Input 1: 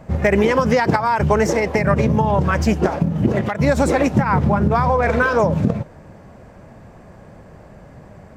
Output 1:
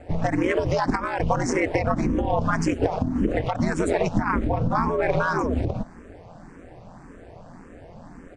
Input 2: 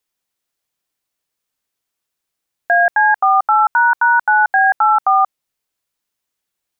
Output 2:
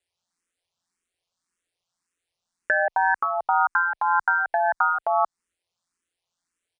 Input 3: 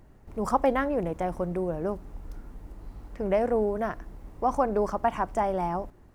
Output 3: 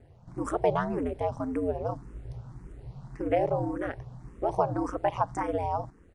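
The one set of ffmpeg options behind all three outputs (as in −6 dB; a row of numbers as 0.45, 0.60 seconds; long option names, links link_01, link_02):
-filter_complex "[0:a]acompressor=threshold=-17dB:ratio=6,aeval=exprs='val(0)*sin(2*PI*87*n/s)':channel_layout=same,aresample=22050,aresample=44100,asplit=2[link_01][link_02];[link_02]afreqshift=1.8[link_03];[link_01][link_03]amix=inputs=2:normalize=1,volume=4dB"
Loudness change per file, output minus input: −6.5, −9.0, −2.0 LU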